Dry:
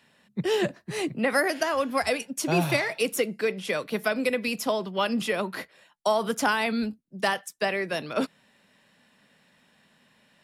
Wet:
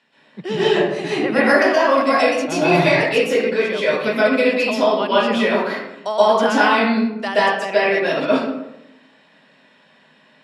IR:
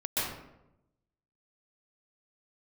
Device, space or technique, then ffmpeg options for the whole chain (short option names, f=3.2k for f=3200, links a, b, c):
supermarket ceiling speaker: -filter_complex "[0:a]highpass=220,lowpass=5.3k[a];[1:a]atrim=start_sample=2205[b];[a][b]afir=irnorm=-1:irlink=0,volume=2dB"